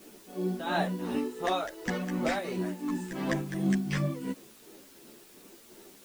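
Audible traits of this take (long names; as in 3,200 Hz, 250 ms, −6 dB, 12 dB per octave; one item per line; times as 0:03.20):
tremolo triangle 2.8 Hz, depth 75%
a quantiser's noise floor 10 bits, dither triangular
a shimmering, thickened sound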